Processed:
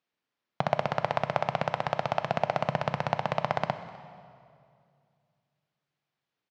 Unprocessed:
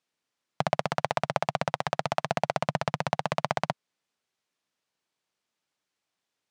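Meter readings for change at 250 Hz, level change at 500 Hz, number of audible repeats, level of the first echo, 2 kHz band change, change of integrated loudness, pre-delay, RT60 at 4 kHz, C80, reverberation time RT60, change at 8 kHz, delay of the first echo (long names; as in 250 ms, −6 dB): −0.5 dB, +0.5 dB, 1, −23.0 dB, −1.5 dB, −0.5 dB, 7 ms, 1.8 s, 12.0 dB, 2.3 s, below −10 dB, 253 ms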